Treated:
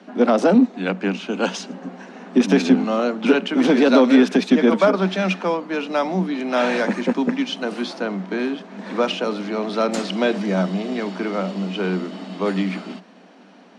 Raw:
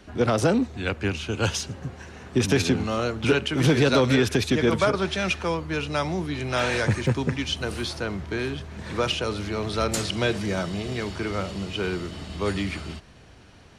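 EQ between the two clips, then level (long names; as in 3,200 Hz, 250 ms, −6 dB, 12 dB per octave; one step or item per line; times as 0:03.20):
Chebyshev high-pass with heavy ripple 180 Hz, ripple 6 dB
high-frequency loss of the air 75 metres
low-shelf EQ 300 Hz +7 dB
+7.0 dB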